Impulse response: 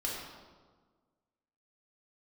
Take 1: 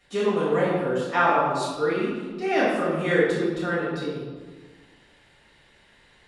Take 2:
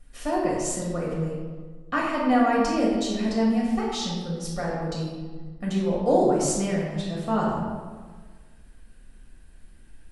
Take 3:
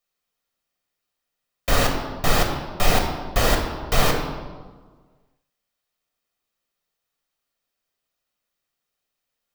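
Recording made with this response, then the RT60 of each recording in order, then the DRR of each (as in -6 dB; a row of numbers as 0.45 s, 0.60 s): 2; 1.5 s, 1.5 s, 1.5 s; -9.0 dB, -4.5 dB, 2.0 dB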